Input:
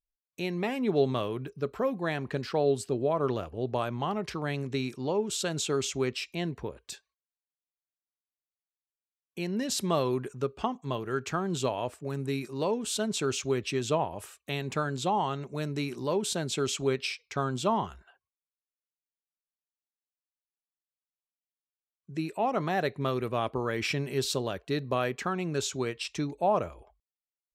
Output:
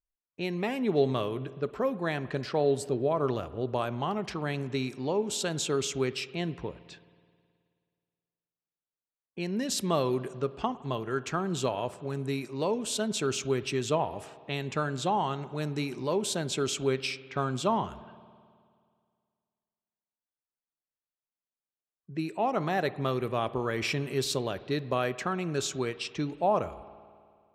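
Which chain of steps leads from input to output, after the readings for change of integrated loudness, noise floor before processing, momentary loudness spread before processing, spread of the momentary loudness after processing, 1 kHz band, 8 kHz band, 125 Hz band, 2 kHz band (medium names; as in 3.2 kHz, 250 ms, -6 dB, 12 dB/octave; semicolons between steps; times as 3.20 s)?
0.0 dB, under -85 dBFS, 7 LU, 7 LU, 0.0 dB, 0.0 dB, 0.0 dB, 0.0 dB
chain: level-controlled noise filter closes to 1.4 kHz, open at -28 dBFS; spring tank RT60 2.1 s, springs 53 ms, chirp 75 ms, DRR 16 dB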